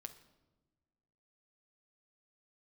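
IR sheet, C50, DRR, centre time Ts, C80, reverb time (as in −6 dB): 12.0 dB, 7.5 dB, 8 ms, 15.5 dB, non-exponential decay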